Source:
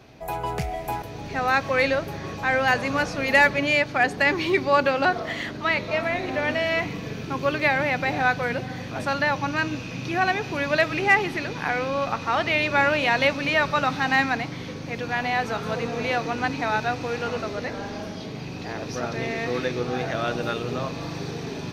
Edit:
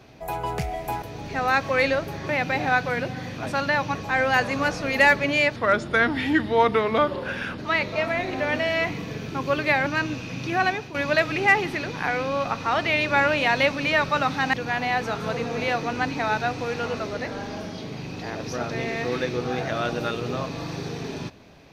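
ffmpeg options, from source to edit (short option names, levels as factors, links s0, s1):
-filter_complex "[0:a]asplit=8[s0][s1][s2][s3][s4][s5][s6][s7];[s0]atrim=end=2.292[s8];[s1]atrim=start=7.818:end=9.482[s9];[s2]atrim=start=2.288:end=3.904[s10];[s3]atrim=start=3.9:end=5.54,asetpts=PTS-STARTPTS,asetrate=35721,aresample=44100[s11];[s4]atrim=start=5.536:end=7.822[s12];[s5]atrim=start=9.478:end=10.56,asetpts=PTS-STARTPTS,afade=t=out:st=0.812:d=0.27:silence=0.237137[s13];[s6]atrim=start=10.56:end=14.152,asetpts=PTS-STARTPTS,afade=t=in:d=0.004:c=hsin:silence=0.237137[s14];[s7]atrim=start=14.958[s15];[s8][s9]acrossfade=d=0.004:c1=hsin:c2=hsin[s16];[s16][s10]acrossfade=d=0.004:c1=hsin:c2=hsin[s17];[s17][s11]acrossfade=d=0.004:c1=hsin:c2=hsin[s18];[s18][s12]acrossfade=d=0.004:c1=hsin:c2=hsin[s19];[s13][s14]concat=n=2:v=0:a=1[s20];[s19][s20]acrossfade=d=0.004:c1=hsin:c2=hsin[s21];[s21][s15]acrossfade=d=0.004:c1=hsin:c2=hsin"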